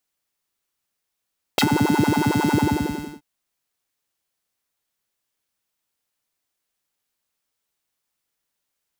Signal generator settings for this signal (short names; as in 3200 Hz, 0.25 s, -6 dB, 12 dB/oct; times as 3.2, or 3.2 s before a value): synth patch with filter wobble D4, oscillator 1 square, oscillator 2 level -10.5 dB, sub -7 dB, noise -14 dB, filter highpass, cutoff 110 Hz, Q 3.7, filter envelope 4 oct, filter decay 0.07 s, filter sustain 40%, attack 2.5 ms, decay 0.07 s, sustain -10.5 dB, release 0.67 s, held 0.96 s, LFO 11 Hz, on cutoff 1.8 oct